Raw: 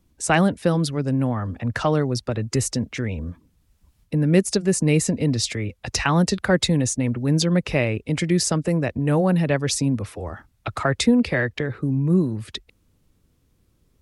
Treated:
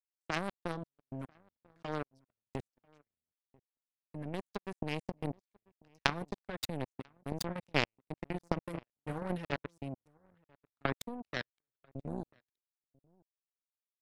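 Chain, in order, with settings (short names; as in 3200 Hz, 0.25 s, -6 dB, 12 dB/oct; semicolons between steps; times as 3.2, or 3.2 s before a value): level quantiser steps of 21 dB; outdoor echo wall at 170 m, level -9 dB; power-law curve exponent 3; gain +3 dB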